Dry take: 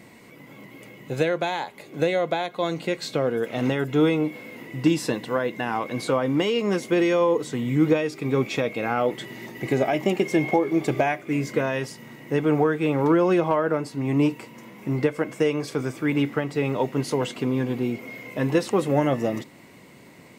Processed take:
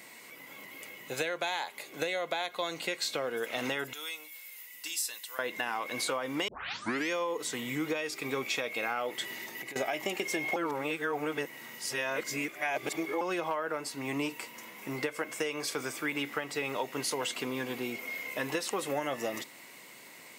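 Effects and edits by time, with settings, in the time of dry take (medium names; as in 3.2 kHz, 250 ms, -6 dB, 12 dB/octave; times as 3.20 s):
3.93–5.39 s: differentiator
6.48 s: tape start 0.62 s
9.34–9.76 s: compression 8:1, threshold -35 dBFS
10.56–13.21 s: reverse
whole clip: high-pass 1.4 kHz 6 dB/octave; treble shelf 8.4 kHz +6.5 dB; compression, threshold -32 dBFS; trim +3 dB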